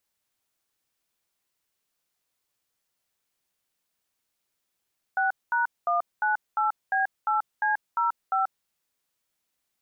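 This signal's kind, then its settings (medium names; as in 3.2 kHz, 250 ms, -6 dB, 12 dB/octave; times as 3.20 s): DTMF "6#198B8C05", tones 135 ms, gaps 215 ms, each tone -24 dBFS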